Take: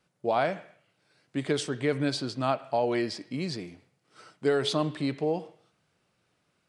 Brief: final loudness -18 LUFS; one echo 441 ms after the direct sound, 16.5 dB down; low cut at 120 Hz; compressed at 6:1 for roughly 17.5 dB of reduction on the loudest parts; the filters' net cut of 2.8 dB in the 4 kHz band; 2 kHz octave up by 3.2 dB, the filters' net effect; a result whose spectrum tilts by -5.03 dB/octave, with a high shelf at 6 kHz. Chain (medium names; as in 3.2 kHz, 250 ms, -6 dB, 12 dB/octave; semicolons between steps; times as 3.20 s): high-pass 120 Hz; peaking EQ 2 kHz +5 dB; peaking EQ 4 kHz -6 dB; treble shelf 6 kHz +3.5 dB; compression 6:1, threshold -40 dBFS; delay 441 ms -16.5 dB; trim +26 dB